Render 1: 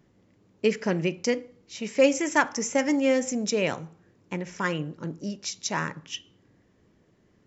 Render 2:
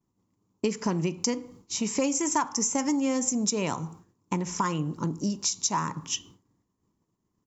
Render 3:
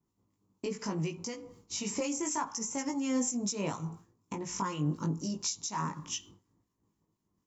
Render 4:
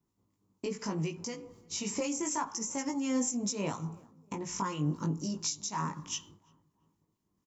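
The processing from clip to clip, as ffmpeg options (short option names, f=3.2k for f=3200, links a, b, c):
-af "agate=range=-33dB:threshold=-49dB:ratio=3:detection=peak,firequalizer=gain_entry='entry(290,0);entry(560,-9);entry(1000,7);entry(1600,-10);entry(6900,7)':delay=0.05:min_phase=1,acompressor=threshold=-33dB:ratio=4,volume=8dB"
-filter_complex "[0:a]alimiter=limit=-20.5dB:level=0:latency=1:release=299,flanger=delay=18:depth=2.5:speed=0.74,acrossover=split=1300[a][b];[a]aeval=exprs='val(0)*(1-0.5/2+0.5/2*cos(2*PI*4.1*n/s))':c=same[c];[b]aeval=exprs='val(0)*(1-0.5/2-0.5/2*cos(2*PI*4.1*n/s))':c=same[d];[c][d]amix=inputs=2:normalize=0,volume=3dB"
-filter_complex "[0:a]asplit=2[a][b];[b]adelay=341,lowpass=f=1.1k:p=1,volume=-23.5dB,asplit=2[c][d];[d]adelay=341,lowpass=f=1.1k:p=1,volume=0.46,asplit=2[e][f];[f]adelay=341,lowpass=f=1.1k:p=1,volume=0.46[g];[a][c][e][g]amix=inputs=4:normalize=0"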